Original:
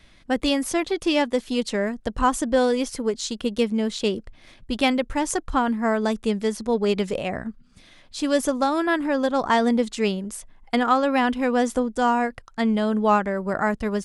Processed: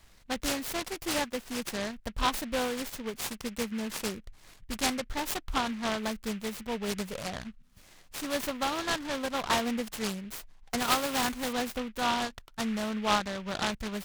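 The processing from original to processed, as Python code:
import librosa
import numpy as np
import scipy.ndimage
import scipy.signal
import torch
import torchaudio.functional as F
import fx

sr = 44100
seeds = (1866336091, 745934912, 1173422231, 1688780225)

y = fx.resample_bad(x, sr, factor=8, down='none', up='hold', at=(10.8, 11.53))
y = fx.peak_eq(y, sr, hz=370.0, db=-10.5, octaves=1.9)
y = fx.noise_mod_delay(y, sr, seeds[0], noise_hz=2000.0, depth_ms=0.097)
y = F.gain(torch.from_numpy(y), -4.0).numpy()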